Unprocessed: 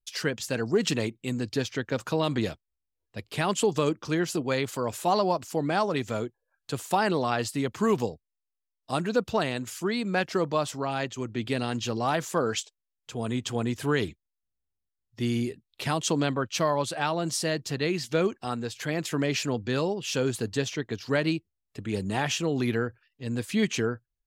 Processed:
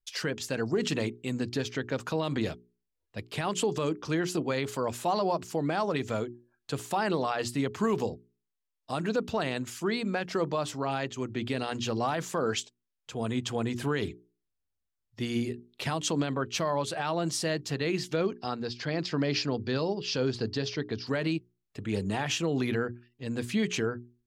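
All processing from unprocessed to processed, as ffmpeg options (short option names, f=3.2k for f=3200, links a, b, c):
-filter_complex "[0:a]asettb=1/sr,asplit=3[a][b][c];[a]atrim=end=18.164[d];[b]atrim=start=18.16:end=21.07,asetpts=PTS-STARTPTS,afade=t=in:d=0.004:c=qsin,afade=t=out:st=2.906:d=0.004:c=qsin,lowpass=f=4.9k:t=q:w=5.7,highshelf=f=2.5k:g=-9.5[e];[c]atrim=start=21.066[f];[d][e]acrossfade=d=0.004:c1=hsin:c2=qsin[g];[g][f]acrossfade=d=0.004:c1=qsin:c2=hsin,highshelf=f=7.5k:g=-6,bandreject=f=60:t=h:w=6,bandreject=f=120:t=h:w=6,bandreject=f=180:t=h:w=6,bandreject=f=240:t=h:w=6,bandreject=f=300:t=h:w=6,bandreject=f=360:t=h:w=6,bandreject=f=420:t=h:w=6,alimiter=limit=-18.5dB:level=0:latency=1:release=60"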